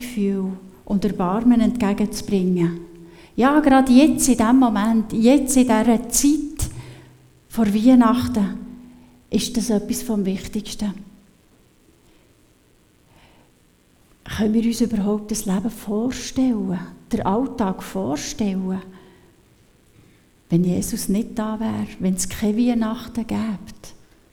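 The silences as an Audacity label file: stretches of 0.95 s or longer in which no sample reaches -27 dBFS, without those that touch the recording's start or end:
10.960000	14.260000	silence
18.820000	20.520000	silence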